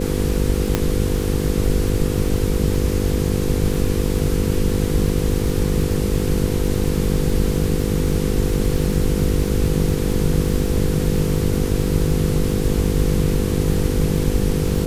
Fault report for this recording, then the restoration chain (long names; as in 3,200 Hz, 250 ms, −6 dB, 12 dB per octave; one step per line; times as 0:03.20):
mains buzz 50 Hz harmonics 10 −23 dBFS
surface crackle 30 per second −25 dBFS
0:00.75: click −3 dBFS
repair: click removal
hum removal 50 Hz, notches 10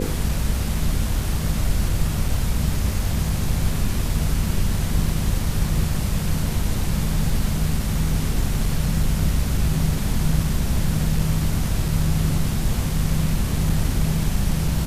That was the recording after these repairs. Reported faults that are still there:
none of them is left